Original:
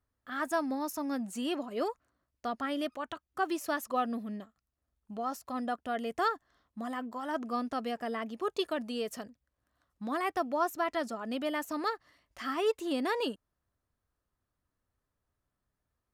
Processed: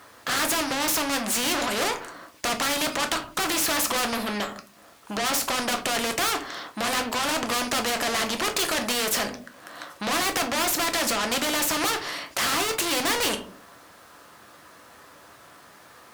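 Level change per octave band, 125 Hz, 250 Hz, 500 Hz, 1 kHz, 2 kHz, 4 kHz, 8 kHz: no reading, +4.0 dB, +4.5 dB, +7.0 dB, +13.5 dB, +18.0 dB, +24.0 dB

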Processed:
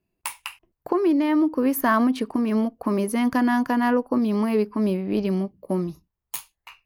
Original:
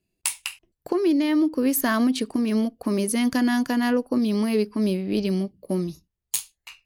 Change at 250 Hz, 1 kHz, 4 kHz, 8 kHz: +0.5 dB, +6.0 dB, -6.0 dB, -8.5 dB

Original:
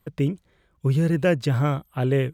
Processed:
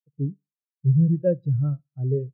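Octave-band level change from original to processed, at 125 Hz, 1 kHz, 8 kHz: +0.5 dB, under -20 dB, no reading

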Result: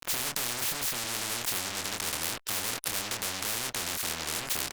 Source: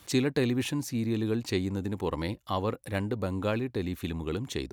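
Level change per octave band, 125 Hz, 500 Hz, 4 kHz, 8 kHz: -14.0 dB, -11.0 dB, +7.5 dB, +14.0 dB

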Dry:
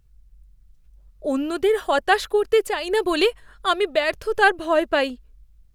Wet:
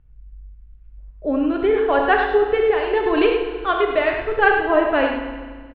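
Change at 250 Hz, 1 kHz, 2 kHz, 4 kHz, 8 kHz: +4.5 dB, +2.5 dB, +2.0 dB, -5.0 dB, under -35 dB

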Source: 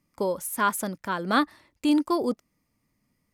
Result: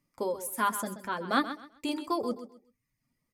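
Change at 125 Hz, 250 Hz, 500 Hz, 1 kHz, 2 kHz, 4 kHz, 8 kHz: -8.0 dB, -8.5 dB, -5.0 dB, -3.5 dB, -4.5 dB, -4.0 dB, -4.0 dB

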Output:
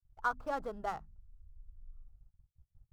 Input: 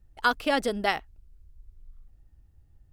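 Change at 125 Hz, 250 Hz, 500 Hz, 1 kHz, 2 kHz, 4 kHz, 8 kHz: -9.0 dB, -16.5 dB, -11.5 dB, -8.5 dB, -13.0 dB, -25.0 dB, -16.5 dB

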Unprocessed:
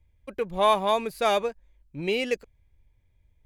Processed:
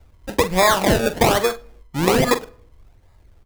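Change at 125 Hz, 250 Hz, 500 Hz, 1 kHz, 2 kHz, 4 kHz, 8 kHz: +17.0 dB, +12.5 dB, +6.5 dB, +5.5 dB, +11.0 dB, +8.0 dB, +18.5 dB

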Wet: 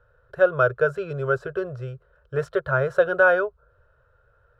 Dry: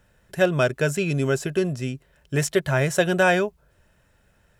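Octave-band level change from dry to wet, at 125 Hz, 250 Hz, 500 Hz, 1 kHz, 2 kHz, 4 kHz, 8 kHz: -6.0 dB, -9.5 dB, +1.5 dB, +1.5 dB, +1.5 dB, under -10 dB, under -25 dB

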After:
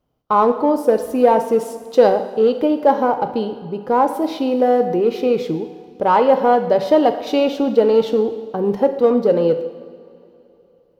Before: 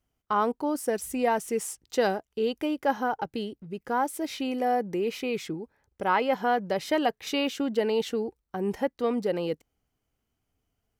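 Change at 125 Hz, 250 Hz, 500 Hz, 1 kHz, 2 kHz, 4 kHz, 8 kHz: +9.5 dB, +10.5 dB, +13.5 dB, +10.5 dB, +2.0 dB, +3.0 dB, no reading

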